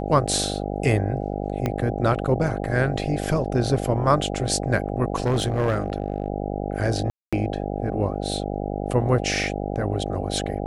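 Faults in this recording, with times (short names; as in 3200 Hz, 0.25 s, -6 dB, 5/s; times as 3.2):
buzz 50 Hz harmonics 16 -28 dBFS
1.66 pop -11 dBFS
5.16–6.28 clipped -16.5 dBFS
7.1–7.33 gap 0.226 s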